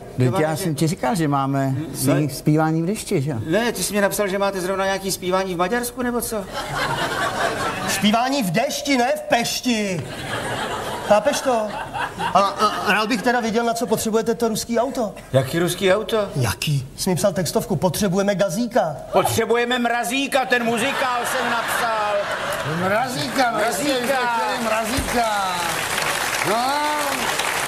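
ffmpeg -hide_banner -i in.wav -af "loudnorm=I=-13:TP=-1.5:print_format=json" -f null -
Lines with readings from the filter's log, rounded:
"input_i" : "-20.6",
"input_tp" : "-3.0",
"input_lra" : "1.7",
"input_thresh" : "-30.6",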